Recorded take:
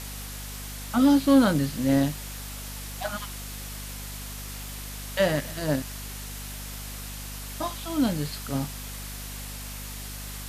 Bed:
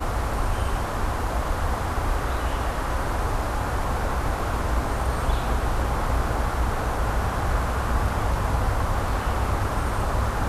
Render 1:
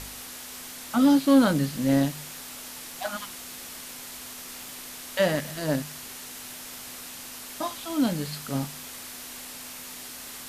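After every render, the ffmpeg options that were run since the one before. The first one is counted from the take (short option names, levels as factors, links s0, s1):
-af "bandreject=f=50:t=h:w=4,bandreject=f=100:t=h:w=4,bandreject=f=150:t=h:w=4,bandreject=f=200:t=h:w=4"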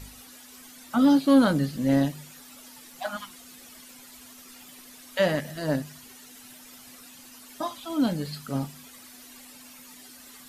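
-af "afftdn=nr=12:nf=-41"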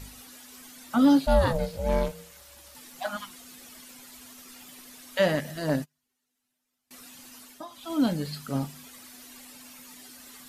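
-filter_complex "[0:a]asettb=1/sr,asplit=3[s0][s1][s2];[s0]atrim=end=1.264[s3];[s1]atrim=start=1.26:end=2.75,asetpts=PTS-STARTPTS,afade=t=in:d=0.004:c=qsin,afade=t=out:st=1.486:d=0.004:c=qsin,aeval=exprs='val(0)*sin(2*PI*320*n/s)':c=same[s4];[s2]atrim=start=2.746[s5];[s3][s4]acrossfade=d=0.004:c1=hsin:c2=qsin[s6];[s6][s5]acrossfade=d=0.004:c1=qsin:c2=hsin,asettb=1/sr,asplit=3[s7][s8][s9];[s7]atrim=end=5.694[s10];[s8]atrim=start=5.69:end=6.91,asetpts=PTS-STARTPTS,afade=t=in:d=0.004:c=qsin,afade=t=out:st=1.216:d=0.004:c=qsin,agate=range=0.0224:threshold=0.0158:ratio=16:release=100:detection=peak[s11];[s9]atrim=start=6.906[s12];[s10][s11]acrossfade=d=0.004:c1=hsin:c2=qsin[s13];[s13][s12]acrossfade=d=0.004:c1=qsin:c2=hsin,asplit=3[s14][s15][s16];[s14]atrim=end=7.66,asetpts=PTS-STARTPTS,afade=t=out:st=7.41:d=0.25:silence=0.237137[s17];[s15]atrim=start=7.66:end=7.67,asetpts=PTS-STARTPTS,volume=0.237[s18];[s16]atrim=start=7.67,asetpts=PTS-STARTPTS,afade=t=in:d=0.25:silence=0.237137[s19];[s17][s18][s19]concat=n=3:v=0:a=1"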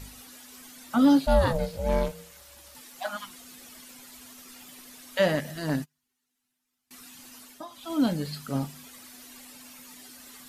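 -filter_complex "[0:a]asettb=1/sr,asplit=3[s0][s1][s2];[s0]atrim=end=2.814[s3];[s1]atrim=start=2.81:end=3.24,asetpts=PTS-STARTPTS,afade=t=in:d=0.004:c=qsin,afade=t=out:st=0.426:d=0.004:c=qsin,lowshelf=f=220:g=-9[s4];[s2]atrim=start=3.236[s5];[s3][s4]acrossfade=d=0.004:c1=hsin:c2=qsin[s6];[s6][s5]acrossfade=d=0.004:c1=qsin:c2=hsin,asettb=1/sr,asplit=3[s7][s8][s9];[s7]atrim=end=5.574[s10];[s8]atrim=start=5.57:end=7.2,asetpts=PTS-STARTPTS,afade=t=in:d=0.004:c=qsin,afade=t=out:st=1.626:d=0.004:c=qsin,equalizer=f=560:w=3.3:g=-9.5[s11];[s9]atrim=start=7.196[s12];[s10][s11]acrossfade=d=0.004:c1=hsin:c2=qsin[s13];[s13][s12]acrossfade=d=0.004:c1=qsin:c2=hsin"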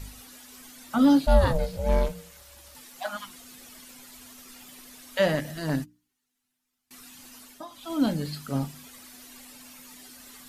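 -af "lowshelf=f=79:g=7.5,bandreject=f=60:t=h:w=6,bandreject=f=120:t=h:w=6,bandreject=f=180:t=h:w=6,bandreject=f=240:t=h:w=6,bandreject=f=300:t=h:w=6"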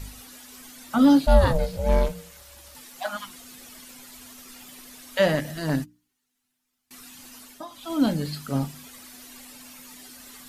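-af "volume=1.33"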